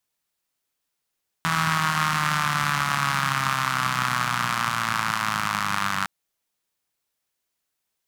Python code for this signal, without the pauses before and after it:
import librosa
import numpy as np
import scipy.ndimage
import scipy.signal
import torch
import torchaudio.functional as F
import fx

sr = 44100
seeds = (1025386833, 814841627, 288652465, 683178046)

y = fx.engine_four_rev(sr, seeds[0], length_s=4.61, rpm=4900, resonances_hz=(160.0, 1200.0), end_rpm=2900)